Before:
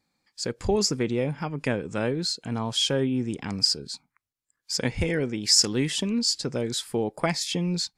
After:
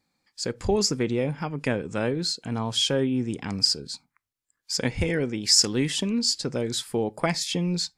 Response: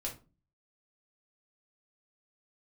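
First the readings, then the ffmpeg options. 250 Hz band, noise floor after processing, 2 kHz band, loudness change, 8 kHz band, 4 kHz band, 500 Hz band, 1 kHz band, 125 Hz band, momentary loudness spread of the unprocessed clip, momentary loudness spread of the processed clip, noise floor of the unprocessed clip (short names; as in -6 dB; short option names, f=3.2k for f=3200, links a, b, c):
+0.5 dB, -82 dBFS, +0.5 dB, +0.5 dB, +0.5 dB, +0.5 dB, +0.5 dB, +0.5 dB, +0.5 dB, 9 LU, 9 LU, -83 dBFS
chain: -filter_complex "[0:a]asplit=2[a][b];[1:a]atrim=start_sample=2205,atrim=end_sample=4410[c];[b][c]afir=irnorm=-1:irlink=0,volume=-20.5dB[d];[a][d]amix=inputs=2:normalize=0"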